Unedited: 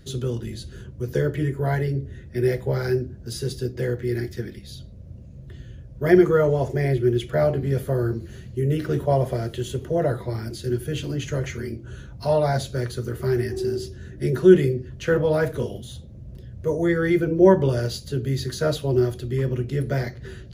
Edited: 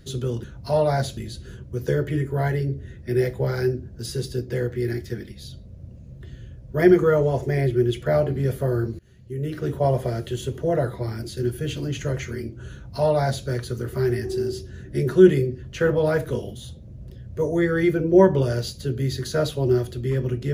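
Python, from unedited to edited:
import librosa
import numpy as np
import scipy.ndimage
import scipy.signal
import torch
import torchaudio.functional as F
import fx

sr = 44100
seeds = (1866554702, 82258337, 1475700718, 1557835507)

y = fx.edit(x, sr, fx.fade_in_from(start_s=8.26, length_s=0.93, floor_db=-22.0),
    fx.duplicate(start_s=12.0, length_s=0.73, to_s=0.44), tone=tone)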